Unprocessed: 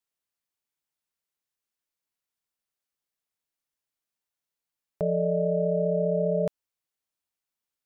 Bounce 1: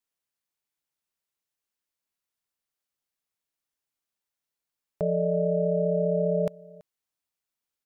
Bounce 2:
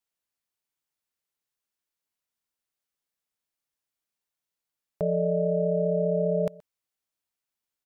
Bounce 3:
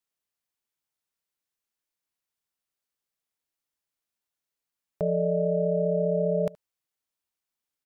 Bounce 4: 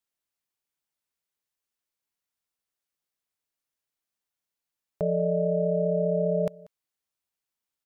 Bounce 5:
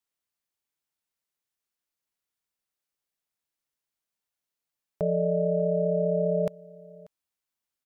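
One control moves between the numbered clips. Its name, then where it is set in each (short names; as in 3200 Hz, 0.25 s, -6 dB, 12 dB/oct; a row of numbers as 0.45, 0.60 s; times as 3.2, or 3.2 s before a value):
echo, time: 332, 125, 73, 188, 588 ms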